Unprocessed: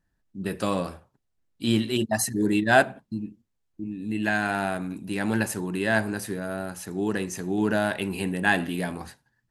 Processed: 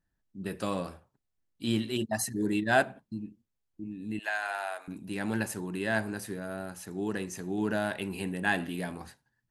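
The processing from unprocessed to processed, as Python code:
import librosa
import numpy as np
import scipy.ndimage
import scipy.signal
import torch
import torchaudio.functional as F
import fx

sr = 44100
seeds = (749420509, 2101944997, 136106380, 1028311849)

y = fx.highpass(x, sr, hz=590.0, slope=24, at=(4.19, 4.88))
y = y * librosa.db_to_amplitude(-6.0)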